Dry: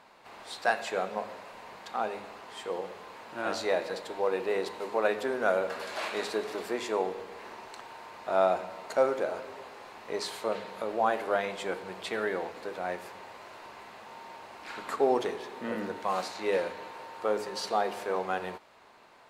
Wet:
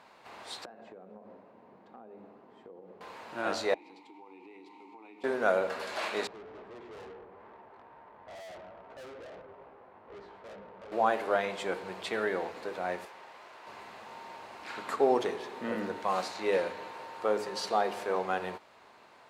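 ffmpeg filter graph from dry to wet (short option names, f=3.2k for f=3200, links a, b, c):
-filter_complex "[0:a]asettb=1/sr,asplit=3[a][b][c];[a]atrim=end=0.654[d];[b]atrim=start=0.65:end=3.01,asetpts=PTS-STARTPTS,afade=t=in:d=0.004:c=qsin,afade=t=out:st=2.356:d=0.004:c=qsin,bandpass=f=240:t=q:w=1.2,acompressor=threshold=-45dB:ratio=16:attack=3.2:release=140:knee=1:detection=peak[e];[c]atrim=start=3.006[f];[d][e]acrossfade=d=0.004:c1=hsin:c2=qsin[g];[g][f]acrossfade=d=0.004:c1=qsin:c2=hsin,asettb=1/sr,asplit=3[h][i][j];[h]atrim=end=3.744[k];[i]atrim=start=3.74:end=5.24,asetpts=PTS-STARTPTS,afade=t=in:d=0.004:c=qsin,afade=t=out:st=1.496:d=0.004:c=qsin,asplit=3[l][m][n];[l]bandpass=f=300:t=q:w=8,volume=0dB[o];[m]bandpass=f=870:t=q:w=8,volume=-6dB[p];[n]bandpass=f=2.24k:t=q:w=8,volume=-9dB[q];[o][p][q]amix=inputs=3:normalize=0,highshelf=f=3.3k:g=12,acompressor=threshold=-48dB:ratio=6:attack=3.2:release=140:knee=1:detection=peak[r];[j]atrim=start=5.236[s];[k][r]acrossfade=d=0.004:c1=hsin:c2=qsin[t];[t][s]acrossfade=d=0.004:c1=qsin:c2=hsin,asettb=1/sr,asplit=3[u][v][w];[u]atrim=end=6.274[x];[v]atrim=start=6.27:end=10.92,asetpts=PTS-STARTPTS,afade=t=in:d=0.004:c=qsin,afade=t=out:st=4.646:d=0.004:c=qsin,lowpass=1.1k,flanger=delay=15:depth=5.6:speed=2.3,aeval=exprs='(tanh(178*val(0)+0.55)-tanh(0.55))/178':c=same[y];[w]atrim=start=10.916[z];[x][y]acrossfade=d=0.004:c1=hsin:c2=qsin[aa];[aa][z]acrossfade=d=0.004:c1=qsin:c2=hsin,asettb=1/sr,asplit=3[ab][ac][ad];[ab]atrim=end=13.054[ae];[ac]atrim=start=13.05:end=13.67,asetpts=PTS-STARTPTS,afade=t=in:d=0.004:c=qsin,afade=t=out:st=0.616:d=0.004:c=qsin,aeval=exprs='clip(val(0),-1,0.00335)':c=same,highpass=f=510:p=1,highshelf=f=3.9k:g=-6[af];[ad]atrim=start=13.666[ag];[ae][af]acrossfade=d=0.004:c1=hsin:c2=qsin[ah];[ah][ag]acrossfade=d=0.004:c1=qsin:c2=hsin,highpass=51,highshelf=f=11k:g=-5"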